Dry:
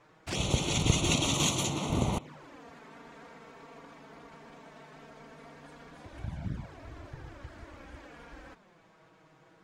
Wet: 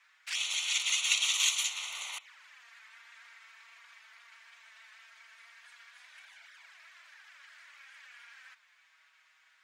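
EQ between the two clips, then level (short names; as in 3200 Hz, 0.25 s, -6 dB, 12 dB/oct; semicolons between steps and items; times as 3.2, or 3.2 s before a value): ladder high-pass 1500 Hz, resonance 30%; +8.0 dB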